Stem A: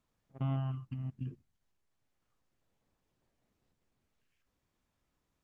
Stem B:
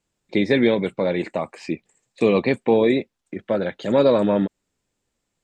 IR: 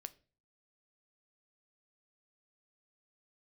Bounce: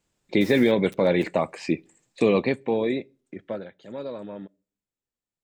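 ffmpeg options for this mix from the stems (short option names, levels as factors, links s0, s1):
-filter_complex "[0:a]acrusher=bits=4:mix=0:aa=0.5,aexciter=amount=13.5:drive=6.4:freq=2600,aeval=exprs='(mod(44.7*val(0)+1,2)-1)/44.7':c=same,volume=0.631[s0];[1:a]volume=0.944,afade=t=out:st=2.23:d=0.35:silence=0.354813,afade=t=out:st=3.44:d=0.25:silence=0.281838,asplit=2[s1][s2];[s2]volume=0.596[s3];[2:a]atrim=start_sample=2205[s4];[s3][s4]afir=irnorm=-1:irlink=0[s5];[s0][s1][s5]amix=inputs=3:normalize=0,alimiter=limit=0.335:level=0:latency=1:release=124"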